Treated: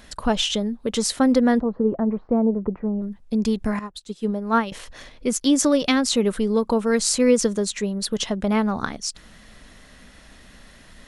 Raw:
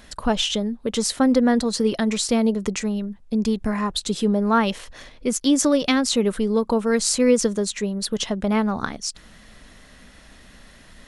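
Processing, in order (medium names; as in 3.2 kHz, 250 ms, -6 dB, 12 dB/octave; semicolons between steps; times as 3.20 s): 1.60–3.02 s: low-pass 1.1 kHz 24 dB/octave; 3.79–4.72 s: upward expansion 2.5:1, over -28 dBFS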